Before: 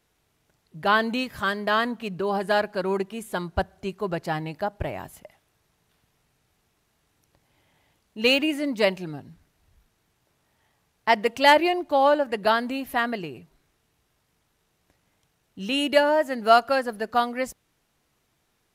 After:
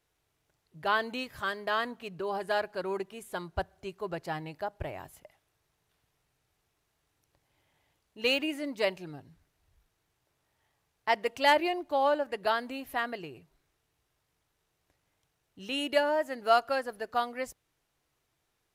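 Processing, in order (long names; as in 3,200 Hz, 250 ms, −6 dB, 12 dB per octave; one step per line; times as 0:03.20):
parametric band 210 Hz −8.5 dB 0.48 octaves
level −7 dB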